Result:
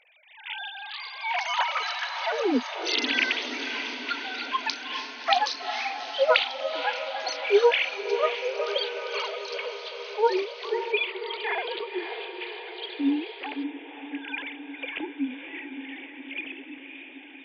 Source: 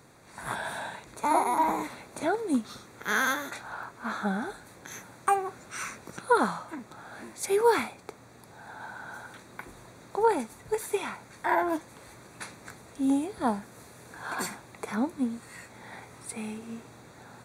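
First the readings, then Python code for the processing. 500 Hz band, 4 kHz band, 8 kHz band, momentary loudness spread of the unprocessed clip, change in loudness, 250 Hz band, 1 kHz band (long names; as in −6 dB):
+4.0 dB, +15.0 dB, −5.0 dB, 20 LU, +2.0 dB, −1.0 dB, −0.5 dB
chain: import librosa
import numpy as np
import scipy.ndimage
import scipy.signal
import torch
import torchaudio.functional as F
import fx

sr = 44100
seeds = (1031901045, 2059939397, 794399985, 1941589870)

y = fx.sine_speech(x, sr)
y = fx.high_shelf_res(y, sr, hz=1800.0, db=11.5, q=3.0)
y = fx.echo_diffused(y, sr, ms=556, feedback_pct=66, wet_db=-8)
y = fx.echo_pitch(y, sr, ms=564, semitones=5, count=2, db_per_echo=-3.0)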